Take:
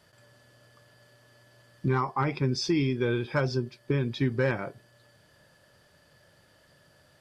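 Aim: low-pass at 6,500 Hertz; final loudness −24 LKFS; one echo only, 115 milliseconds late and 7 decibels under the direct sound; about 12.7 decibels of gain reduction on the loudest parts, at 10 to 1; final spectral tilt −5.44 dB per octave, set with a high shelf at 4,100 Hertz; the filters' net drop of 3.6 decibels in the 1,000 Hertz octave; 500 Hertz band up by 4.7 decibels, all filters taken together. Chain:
low-pass filter 6,500 Hz
parametric band 500 Hz +7.5 dB
parametric band 1,000 Hz −7 dB
high-shelf EQ 4,100 Hz +4 dB
downward compressor 10 to 1, threshold −32 dBFS
single-tap delay 115 ms −7 dB
level +12.5 dB

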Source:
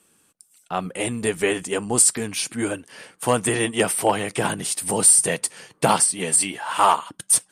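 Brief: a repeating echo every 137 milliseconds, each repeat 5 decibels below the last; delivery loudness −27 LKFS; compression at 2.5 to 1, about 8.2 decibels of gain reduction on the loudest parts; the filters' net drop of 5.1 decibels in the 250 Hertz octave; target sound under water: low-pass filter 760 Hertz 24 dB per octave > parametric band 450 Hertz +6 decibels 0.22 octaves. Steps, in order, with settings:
parametric band 250 Hz −7.5 dB
downward compressor 2.5 to 1, threshold −22 dBFS
low-pass filter 760 Hz 24 dB per octave
parametric band 450 Hz +6 dB 0.22 octaves
repeating echo 137 ms, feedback 56%, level −5 dB
level +2 dB

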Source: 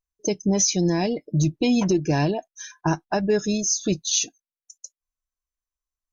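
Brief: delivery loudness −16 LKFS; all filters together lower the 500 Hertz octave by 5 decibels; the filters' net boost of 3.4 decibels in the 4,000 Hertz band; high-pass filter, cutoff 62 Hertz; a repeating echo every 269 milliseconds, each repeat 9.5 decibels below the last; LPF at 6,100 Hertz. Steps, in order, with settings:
high-pass filter 62 Hz
low-pass filter 6,100 Hz
parametric band 500 Hz −7 dB
parametric band 4,000 Hz +5.5 dB
repeating echo 269 ms, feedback 33%, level −9.5 dB
level +7.5 dB

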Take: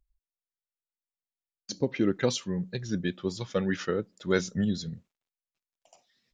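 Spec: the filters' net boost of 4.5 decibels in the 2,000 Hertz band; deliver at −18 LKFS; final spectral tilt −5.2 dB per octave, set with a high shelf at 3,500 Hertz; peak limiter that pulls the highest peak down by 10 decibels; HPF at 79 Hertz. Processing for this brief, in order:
high-pass filter 79 Hz
parametric band 2,000 Hz +7.5 dB
high-shelf EQ 3,500 Hz −7 dB
level +14.5 dB
brickwall limiter −5 dBFS

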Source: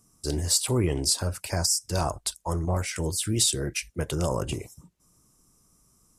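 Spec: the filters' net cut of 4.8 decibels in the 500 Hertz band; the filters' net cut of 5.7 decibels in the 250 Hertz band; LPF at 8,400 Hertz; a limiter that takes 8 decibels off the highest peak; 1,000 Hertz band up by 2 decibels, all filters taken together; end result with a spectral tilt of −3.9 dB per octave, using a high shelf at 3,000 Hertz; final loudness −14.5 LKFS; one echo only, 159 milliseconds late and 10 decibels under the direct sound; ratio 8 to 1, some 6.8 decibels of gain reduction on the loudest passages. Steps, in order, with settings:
low-pass filter 8,400 Hz
parametric band 250 Hz −7.5 dB
parametric band 500 Hz −5 dB
parametric band 1,000 Hz +5.5 dB
high-shelf EQ 3,000 Hz −8 dB
downward compressor 8 to 1, threshold −30 dBFS
brickwall limiter −26.5 dBFS
single-tap delay 159 ms −10 dB
level +22.5 dB

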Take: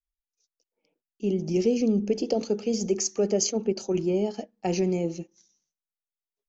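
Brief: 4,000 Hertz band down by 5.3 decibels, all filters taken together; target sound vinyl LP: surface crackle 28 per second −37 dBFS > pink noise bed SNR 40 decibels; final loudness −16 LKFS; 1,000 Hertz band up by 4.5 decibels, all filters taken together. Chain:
parametric band 1,000 Hz +7.5 dB
parametric band 4,000 Hz −8 dB
surface crackle 28 per second −37 dBFS
pink noise bed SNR 40 dB
level +10 dB

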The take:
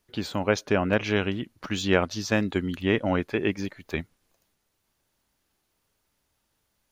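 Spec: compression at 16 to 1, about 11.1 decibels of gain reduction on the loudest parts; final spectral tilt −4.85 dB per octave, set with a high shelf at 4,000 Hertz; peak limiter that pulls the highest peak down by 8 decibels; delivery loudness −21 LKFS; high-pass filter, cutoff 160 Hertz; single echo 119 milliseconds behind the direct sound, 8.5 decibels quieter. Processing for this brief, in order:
high-pass filter 160 Hz
high-shelf EQ 4,000 Hz −7 dB
downward compressor 16 to 1, threshold −28 dBFS
brickwall limiter −23 dBFS
single-tap delay 119 ms −8.5 dB
level +15.5 dB

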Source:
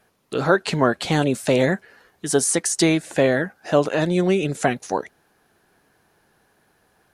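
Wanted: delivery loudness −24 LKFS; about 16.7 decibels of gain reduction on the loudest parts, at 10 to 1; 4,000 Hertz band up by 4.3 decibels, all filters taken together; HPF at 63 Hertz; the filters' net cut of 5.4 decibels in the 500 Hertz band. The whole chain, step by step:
high-pass filter 63 Hz
parametric band 500 Hz −7 dB
parametric band 4,000 Hz +5.5 dB
downward compressor 10 to 1, threshold −32 dBFS
level +12 dB

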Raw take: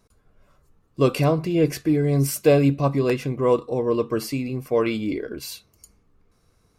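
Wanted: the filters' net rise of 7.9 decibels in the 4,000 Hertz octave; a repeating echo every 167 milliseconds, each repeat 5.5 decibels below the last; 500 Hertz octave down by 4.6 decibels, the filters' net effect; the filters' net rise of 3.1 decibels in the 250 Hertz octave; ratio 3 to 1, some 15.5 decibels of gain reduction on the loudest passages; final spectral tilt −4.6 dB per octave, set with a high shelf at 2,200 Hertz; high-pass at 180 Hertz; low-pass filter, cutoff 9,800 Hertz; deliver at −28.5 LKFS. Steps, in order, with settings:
high-pass filter 180 Hz
low-pass filter 9,800 Hz
parametric band 250 Hz +8 dB
parametric band 500 Hz −8.5 dB
high-shelf EQ 2,200 Hz +5 dB
parametric band 4,000 Hz +5.5 dB
downward compressor 3 to 1, threshold −35 dBFS
repeating echo 167 ms, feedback 53%, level −5.5 dB
level +5 dB

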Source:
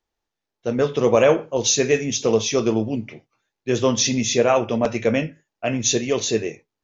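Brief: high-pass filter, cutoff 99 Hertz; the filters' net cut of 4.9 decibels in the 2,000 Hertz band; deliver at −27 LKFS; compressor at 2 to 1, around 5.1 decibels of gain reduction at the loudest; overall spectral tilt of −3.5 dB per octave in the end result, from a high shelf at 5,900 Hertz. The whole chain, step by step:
high-pass filter 99 Hz
parametric band 2,000 Hz −7.5 dB
high-shelf EQ 5,900 Hz +5 dB
downward compressor 2 to 1, threshold −21 dBFS
level −3 dB

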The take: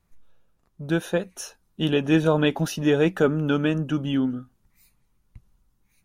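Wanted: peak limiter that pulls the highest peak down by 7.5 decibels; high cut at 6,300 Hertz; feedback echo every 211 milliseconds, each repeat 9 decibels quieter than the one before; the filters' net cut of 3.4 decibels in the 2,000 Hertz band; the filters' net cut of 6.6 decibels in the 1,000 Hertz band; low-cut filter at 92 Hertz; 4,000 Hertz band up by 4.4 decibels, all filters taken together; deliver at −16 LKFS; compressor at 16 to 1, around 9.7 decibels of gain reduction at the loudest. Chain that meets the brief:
high-pass filter 92 Hz
low-pass filter 6,300 Hz
parametric band 1,000 Hz −8.5 dB
parametric band 2,000 Hz −4.5 dB
parametric band 4,000 Hz +9 dB
downward compressor 16 to 1, threshold −25 dBFS
brickwall limiter −22.5 dBFS
repeating echo 211 ms, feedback 35%, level −9 dB
level +17 dB

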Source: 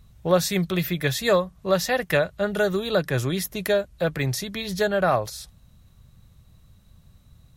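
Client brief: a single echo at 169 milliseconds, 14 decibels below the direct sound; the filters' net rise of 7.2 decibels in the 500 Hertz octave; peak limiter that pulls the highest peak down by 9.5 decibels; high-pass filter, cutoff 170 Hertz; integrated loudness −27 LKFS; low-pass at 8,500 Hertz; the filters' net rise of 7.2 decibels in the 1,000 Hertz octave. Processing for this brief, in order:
high-pass filter 170 Hz
low-pass filter 8,500 Hz
parametric band 500 Hz +6.5 dB
parametric band 1,000 Hz +7.5 dB
brickwall limiter −9.5 dBFS
single-tap delay 169 ms −14 dB
level −5.5 dB

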